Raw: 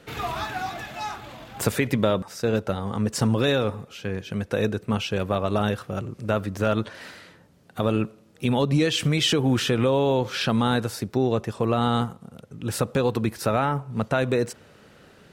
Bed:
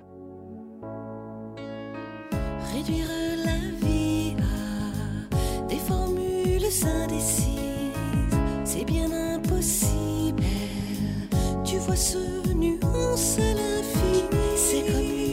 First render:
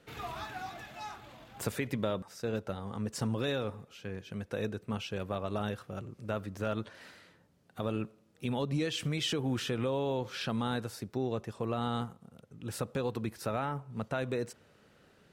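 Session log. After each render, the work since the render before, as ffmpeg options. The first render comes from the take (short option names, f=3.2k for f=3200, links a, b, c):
-af "volume=-11dB"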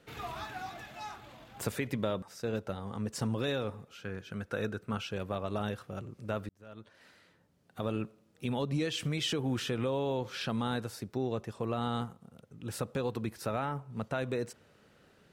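-filter_complex "[0:a]asettb=1/sr,asplit=3[a][b][c];[a]atrim=end=3.934[d];[b]atrim=start=3.93:end=5.12,asetpts=PTS-STARTPTS,afade=t=in:d=0.004:c=qsin,afade=t=out:st=1.186:d=0.004:c=qsin,equalizer=f=1.4k:t=o:w=0.36:g=10[e];[c]atrim=start=5.116[f];[d][e]acrossfade=d=0.004:c1=hsin:c2=qsin[g];[g][f]acrossfade=d=0.004:c1=qsin:c2=hsin,asplit=2[h][i];[h]atrim=end=6.49,asetpts=PTS-STARTPTS,afade=t=out:st=6.486:d=0.004:c=hsin[j];[i]atrim=start=6.49,asetpts=PTS-STARTPTS,afade=t=in:d=1.35[k];[j][k]concat=n=2:v=0:a=1"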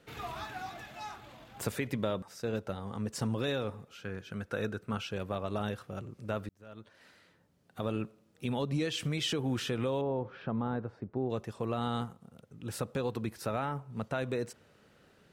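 -filter_complex "[0:a]asettb=1/sr,asplit=3[a][b][c];[a]atrim=end=10.014[d];[b]atrim=start=10.01:end=11.3,asetpts=PTS-STARTPTS,afade=t=in:d=0.004:c=qsin,afade=t=out:st=1.286:d=0.004:c=qsin,lowpass=1.2k[e];[c]atrim=start=11.296[f];[d][e]acrossfade=d=0.004:c1=hsin:c2=qsin[g];[g][f]acrossfade=d=0.004:c1=qsin:c2=hsin"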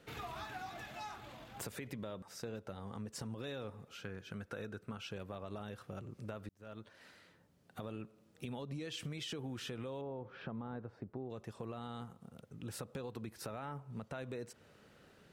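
-af "alimiter=level_in=1dB:limit=-24dB:level=0:latency=1:release=105,volume=-1dB,acompressor=threshold=-43dB:ratio=3"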